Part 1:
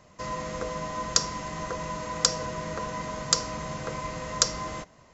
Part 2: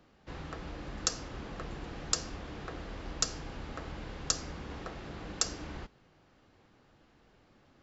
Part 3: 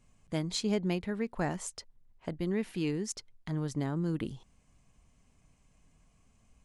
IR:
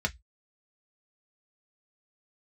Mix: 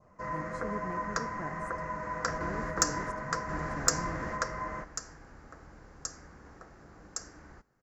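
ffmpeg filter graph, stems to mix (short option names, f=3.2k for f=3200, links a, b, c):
-filter_complex "[0:a]lowpass=2.5k,flanger=delay=1.5:depth=8:regen=-53:speed=1.1:shape=triangular,volume=-1dB[a];[1:a]adelay=1750,volume=1.5dB[b];[2:a]lowpass=f=1k:p=1,volume=-9.5dB,asplit=2[c][d];[d]apad=whole_len=422190[e];[b][e]sidechaingate=range=-12dB:threshold=-50dB:ratio=16:detection=peak[f];[a][f][c]amix=inputs=3:normalize=0,adynamicequalizer=threshold=0.00141:dfrequency=1800:dqfactor=1.6:tfrequency=1800:tqfactor=1.6:attack=5:release=100:ratio=0.375:range=4:mode=boostabove:tftype=bell,aexciter=amount=5.6:drive=6.9:freq=5k,highshelf=f=2.2k:t=q:w=1.5:g=-10.5"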